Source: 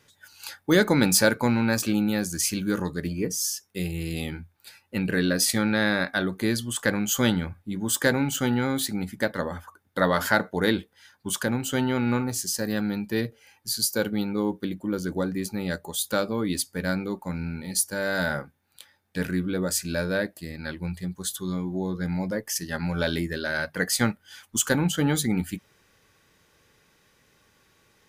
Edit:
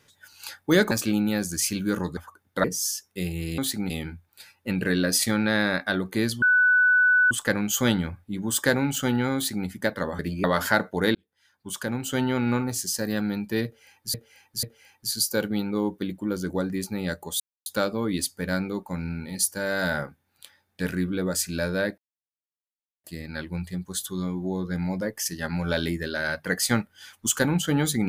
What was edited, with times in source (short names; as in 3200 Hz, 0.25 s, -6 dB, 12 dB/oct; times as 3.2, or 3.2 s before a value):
0.91–1.72 cut
2.98–3.23 swap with 9.57–10.04
6.69 add tone 1490 Hz -15.5 dBFS 0.89 s
8.73–9.05 copy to 4.17
10.75–11.83 fade in
13.25–13.74 loop, 3 plays
16.02 insert silence 0.26 s
20.34 insert silence 1.06 s